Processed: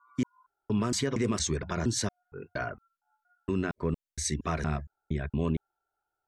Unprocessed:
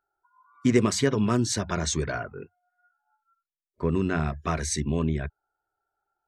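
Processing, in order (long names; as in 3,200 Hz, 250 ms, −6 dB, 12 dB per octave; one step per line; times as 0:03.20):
slices reordered back to front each 232 ms, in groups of 3
brickwall limiter −16 dBFS, peak gain reduction 8.5 dB
level −2.5 dB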